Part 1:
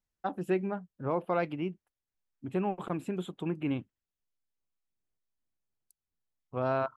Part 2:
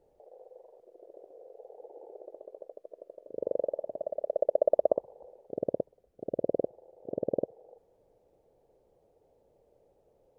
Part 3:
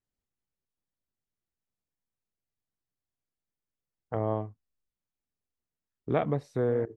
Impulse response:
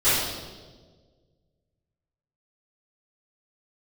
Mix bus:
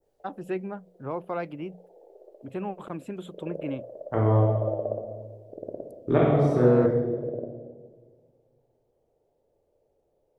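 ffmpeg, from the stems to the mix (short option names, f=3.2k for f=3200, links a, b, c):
-filter_complex "[0:a]volume=-1.5dB[a];[1:a]volume=-6.5dB,asplit=2[b][c];[c]volume=-21dB[d];[2:a]volume=2dB,asplit=2[e][f];[f]volume=-12.5dB[g];[3:a]atrim=start_sample=2205[h];[d][g]amix=inputs=2:normalize=0[i];[i][h]afir=irnorm=-1:irlink=0[j];[a][b][e][j]amix=inputs=4:normalize=0,bandreject=f=60:t=h:w=6,bandreject=f=120:t=h:w=6,bandreject=f=180:t=h:w=6,adynamicequalizer=threshold=0.00355:dfrequency=3000:dqfactor=0.93:tfrequency=3000:tqfactor=0.93:attack=5:release=100:ratio=0.375:range=3:mode=cutabove:tftype=bell,acrossover=split=480[k][l];[l]acompressor=threshold=-23dB:ratio=6[m];[k][m]amix=inputs=2:normalize=0"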